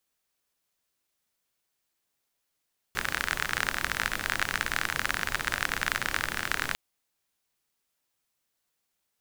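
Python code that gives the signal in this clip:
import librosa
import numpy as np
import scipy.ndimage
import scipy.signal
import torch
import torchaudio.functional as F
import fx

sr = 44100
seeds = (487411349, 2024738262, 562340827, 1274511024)

y = fx.rain(sr, seeds[0], length_s=3.8, drops_per_s=40.0, hz=1600.0, bed_db=-7.5)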